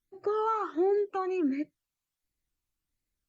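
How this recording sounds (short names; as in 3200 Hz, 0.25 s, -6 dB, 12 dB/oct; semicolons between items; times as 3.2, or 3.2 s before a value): phasing stages 12, 1.4 Hz, lowest notch 540–1100 Hz; Opus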